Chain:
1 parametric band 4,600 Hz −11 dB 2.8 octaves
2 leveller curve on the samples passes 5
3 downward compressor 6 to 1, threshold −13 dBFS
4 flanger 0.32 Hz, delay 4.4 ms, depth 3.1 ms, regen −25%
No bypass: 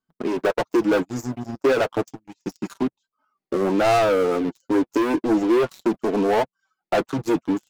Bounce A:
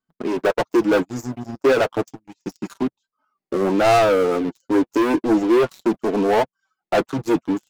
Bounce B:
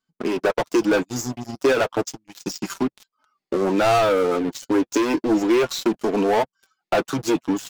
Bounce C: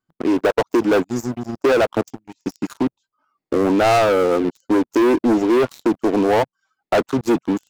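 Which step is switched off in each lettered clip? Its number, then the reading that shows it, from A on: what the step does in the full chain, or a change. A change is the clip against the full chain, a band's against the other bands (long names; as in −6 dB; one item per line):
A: 3, change in momentary loudness spread +1 LU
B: 1, 8 kHz band +8.0 dB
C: 4, change in crest factor −2.0 dB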